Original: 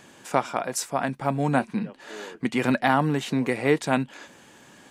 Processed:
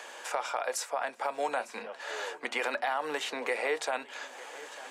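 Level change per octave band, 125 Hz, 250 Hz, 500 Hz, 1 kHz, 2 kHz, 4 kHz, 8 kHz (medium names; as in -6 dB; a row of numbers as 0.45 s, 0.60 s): under -35 dB, -22.0 dB, -6.5 dB, -6.5 dB, -4.0 dB, -2.0 dB, -5.0 dB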